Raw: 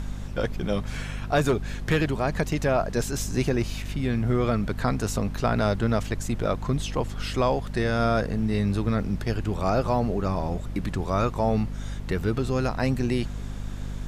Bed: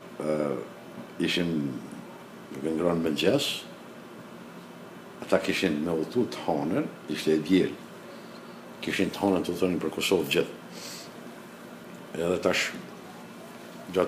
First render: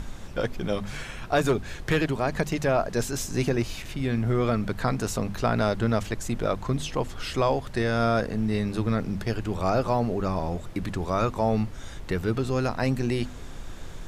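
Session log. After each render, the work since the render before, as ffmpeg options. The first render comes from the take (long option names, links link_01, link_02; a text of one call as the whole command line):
ffmpeg -i in.wav -af "bandreject=frequency=50:width_type=h:width=6,bandreject=frequency=100:width_type=h:width=6,bandreject=frequency=150:width_type=h:width=6,bandreject=frequency=200:width_type=h:width=6,bandreject=frequency=250:width_type=h:width=6" out.wav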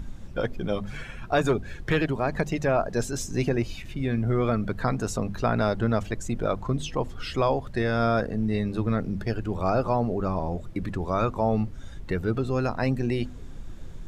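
ffmpeg -i in.wav -af "afftdn=noise_reduction=10:noise_floor=-39" out.wav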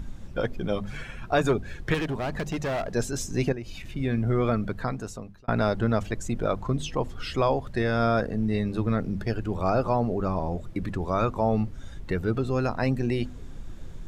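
ffmpeg -i in.wav -filter_complex "[0:a]asettb=1/sr,asplit=3[link_01][link_02][link_03];[link_01]atrim=end=1.944[link_04];[link_02]atrim=start=1.94:end=2.94,asetpts=PTS-STARTPTS,afade=type=in:duration=0.004:curve=qsin,afade=type=out:start_time=0.996:duration=0.004:curve=qsin,asoftclip=type=hard:threshold=-25.5dB[link_05];[link_03]atrim=start=2.936[link_06];[link_04][link_05]acrossfade=duration=0.004:curve1=hsin:curve2=qsin[link_07];[link_07][link_06]acrossfade=duration=0.004:curve1=qsin:curve2=hsin,asettb=1/sr,asplit=3[link_08][link_09][link_10];[link_08]atrim=end=3.524[link_11];[link_09]atrim=start=3.52:end=3.94,asetpts=PTS-STARTPTS,afade=type=in:duration=0.004:curve=qsin,afade=type=out:start_time=0.416:duration=0.004:curve=qsin,acompressor=threshold=-33dB:ratio=4:attack=3.2:release=140:knee=1:detection=peak[link_12];[link_10]atrim=start=3.936[link_13];[link_11][link_12]acrossfade=duration=0.004:curve1=hsin:curve2=qsin[link_14];[link_14][link_13]acrossfade=duration=0.004:curve1=qsin:curve2=hsin,asplit=2[link_15][link_16];[link_15]atrim=end=5.48,asetpts=PTS-STARTPTS,afade=type=out:start_time=4.53:duration=0.95[link_17];[link_16]atrim=start=5.48,asetpts=PTS-STARTPTS,afade=type=in:duration=0.004:curve=hsin[link_18];[link_17][link_18]concat=n=2:v=0:a=1" out.wav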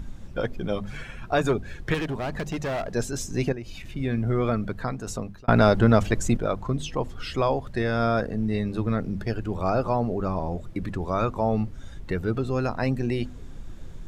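ffmpeg -i in.wav -filter_complex "[0:a]asettb=1/sr,asplit=3[link_01][link_02][link_03];[link_01]atrim=end=5.074[link_04];[link_02]atrim=start=5.07:end=6.37,asetpts=PTS-STARTPTS,afade=type=in:duration=0.004:curve=qsin,afade=type=out:start_time=1.296:duration=0.004:curve=qsin,acontrast=78[link_05];[link_03]atrim=start=6.366[link_06];[link_04][link_05]acrossfade=duration=0.004:curve1=hsin:curve2=qsin[link_07];[link_07][link_06]acrossfade=duration=0.004:curve1=qsin:curve2=hsin" out.wav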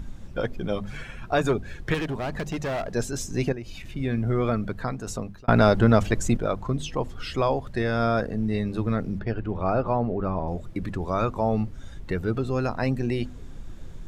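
ffmpeg -i in.wav -filter_complex "[0:a]asettb=1/sr,asplit=3[link_01][link_02][link_03];[link_01]atrim=end=9.194[link_04];[link_02]atrim=start=9.19:end=10.48,asetpts=PTS-STARTPTS,afade=type=in:duration=0.004:curve=qsin,afade=type=out:start_time=1.286:duration=0.004:curve=qsin,lowpass=2900[link_05];[link_03]atrim=start=10.476[link_06];[link_04][link_05]acrossfade=duration=0.004:curve1=hsin:curve2=qsin[link_07];[link_07][link_06]acrossfade=duration=0.004:curve1=qsin:curve2=hsin" out.wav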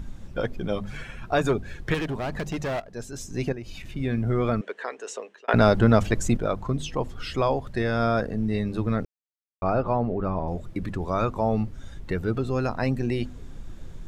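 ffmpeg -i in.wav -filter_complex "[0:a]asettb=1/sr,asplit=3[link_01][link_02][link_03];[link_01]atrim=end=4.614[link_04];[link_02]atrim=start=4.61:end=5.54,asetpts=PTS-STARTPTS,afade=type=in:duration=0.004:curve=qsin,afade=type=out:start_time=0.926:duration=0.004:curve=qsin,highpass=frequency=420:width=0.5412,highpass=frequency=420:width=1.3066,equalizer=frequency=430:width_type=q:width=4:gain=6,equalizer=frequency=730:width_type=q:width=4:gain=-4,equalizer=frequency=1300:width_type=q:width=4:gain=-4,equalizer=frequency=1800:width_type=q:width=4:gain=7,equalizer=frequency=2900:width_type=q:width=4:gain=8,equalizer=frequency=4700:width_type=q:width=4:gain=-6,lowpass=frequency=8200:width=0.5412,lowpass=frequency=8200:width=1.3066[link_05];[link_03]atrim=start=5.536[link_06];[link_04][link_05]acrossfade=duration=0.004:curve1=hsin:curve2=qsin[link_07];[link_07][link_06]acrossfade=duration=0.004:curve1=qsin:curve2=hsin,asplit=4[link_08][link_09][link_10][link_11];[link_08]atrim=end=2.8,asetpts=PTS-STARTPTS,afade=type=out:start_time=2.796:duration=0.004:curve=hsin:silence=0.16788[link_12];[link_09]atrim=start=2.8:end=9.05,asetpts=PTS-STARTPTS,afade=type=in:duration=0.9:silence=0.16788,afade=type=out:start_time=6.246:duration=0.004:curve=hsin[link_13];[link_10]atrim=start=9.05:end=9.62,asetpts=PTS-STARTPTS,volume=0[link_14];[link_11]atrim=start=9.62,asetpts=PTS-STARTPTS,afade=type=in:duration=0.004:curve=hsin[link_15];[link_12][link_13][link_14][link_15]concat=n=4:v=0:a=1" out.wav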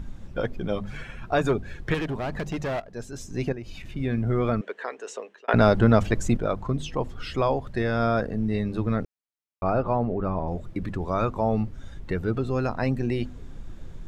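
ffmpeg -i in.wav -af "highshelf=frequency=4900:gain=-5.5" out.wav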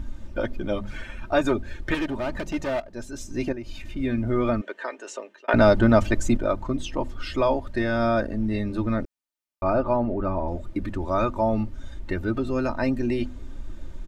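ffmpeg -i in.wav -af "aecho=1:1:3.3:0.68" out.wav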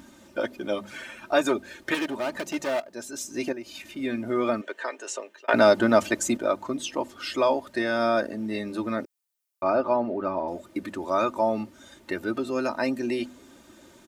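ffmpeg -i in.wav -af "highpass=270,highshelf=frequency=5900:gain=11.5" out.wav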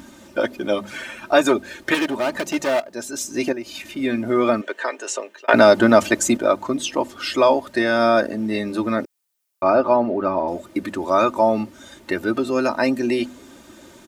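ffmpeg -i in.wav -af "volume=7dB,alimiter=limit=-1dB:level=0:latency=1" out.wav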